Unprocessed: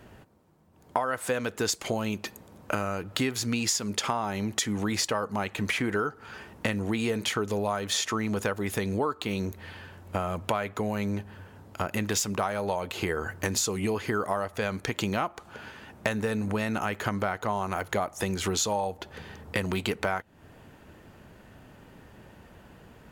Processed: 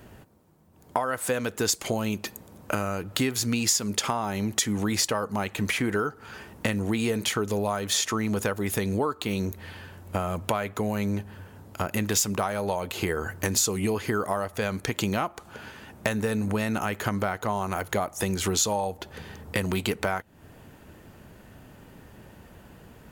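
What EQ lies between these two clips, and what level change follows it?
low-shelf EQ 440 Hz +3 dB
high-shelf EQ 7,300 Hz +9 dB
0.0 dB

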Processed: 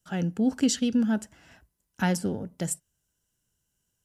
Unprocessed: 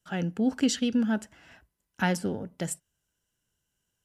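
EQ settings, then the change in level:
bass and treble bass +3 dB, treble +14 dB
high-shelf EQ 2,900 Hz −10.5 dB
0.0 dB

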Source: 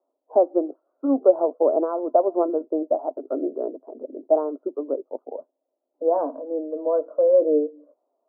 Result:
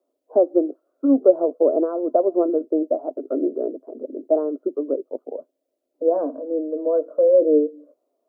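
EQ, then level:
parametric band 880 Hz −13 dB 0.73 octaves
dynamic equaliser 1,300 Hz, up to −4 dB, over −40 dBFS, Q 1.1
+5.5 dB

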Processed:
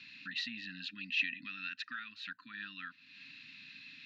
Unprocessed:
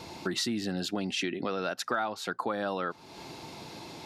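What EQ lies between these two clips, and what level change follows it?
formant filter e
linear-phase brick-wall band-stop 290–1,000 Hz
loudspeaker in its box 100–6,300 Hz, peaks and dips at 100 Hz +5 dB, 960 Hz +5 dB, 2,600 Hz +7 dB, 4,000 Hz +10 dB
+6.5 dB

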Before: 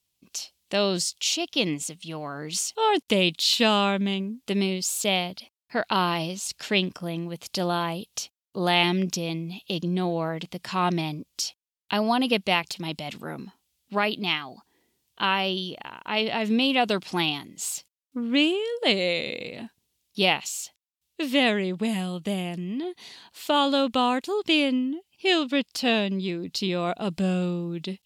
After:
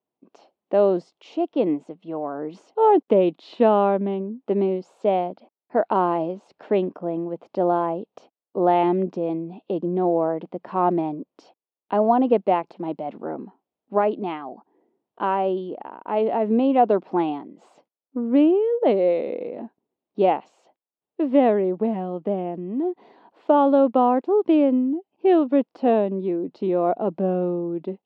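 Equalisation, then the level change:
flat-topped band-pass 480 Hz, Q 0.79
+8.0 dB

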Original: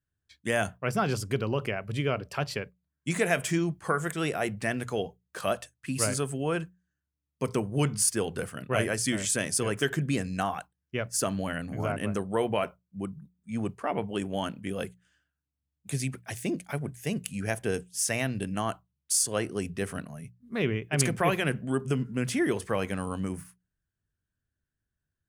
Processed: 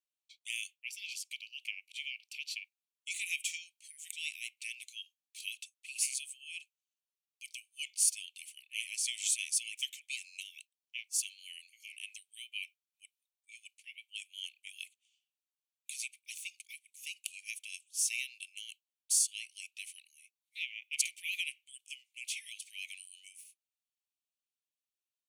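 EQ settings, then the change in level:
Butterworth high-pass 2,300 Hz 96 dB per octave
high-shelf EQ 9,200 Hz −6 dB
notch filter 5,000 Hz, Q 10
0.0 dB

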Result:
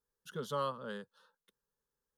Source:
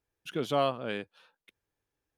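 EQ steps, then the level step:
dynamic equaliser 360 Hz, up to −6 dB, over −42 dBFS, Q 0.99
phaser with its sweep stopped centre 470 Hz, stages 8
−2.0 dB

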